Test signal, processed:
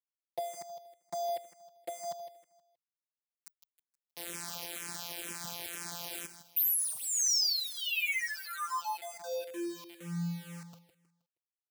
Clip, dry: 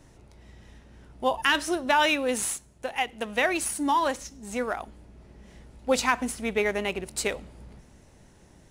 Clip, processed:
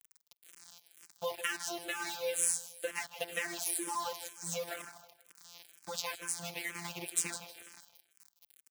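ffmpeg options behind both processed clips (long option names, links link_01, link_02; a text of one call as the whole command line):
ffmpeg -i in.wav -filter_complex "[0:a]acompressor=threshold=-30dB:ratio=20,highshelf=frequency=10000:gain=-3,afftfilt=real='hypot(re,im)*cos(PI*b)':imag='0':win_size=1024:overlap=0.75,aeval=exprs='val(0)*gte(abs(val(0)),0.00708)':channel_layout=same,highpass=110,highshelf=frequency=2900:gain=10.5,asplit=2[link_01][link_02];[link_02]aecho=0:1:158|316|474|632:0.251|0.0904|0.0326|0.0117[link_03];[link_01][link_03]amix=inputs=2:normalize=0,asplit=2[link_04][link_05];[link_05]afreqshift=-2.1[link_06];[link_04][link_06]amix=inputs=2:normalize=1,volume=1dB" out.wav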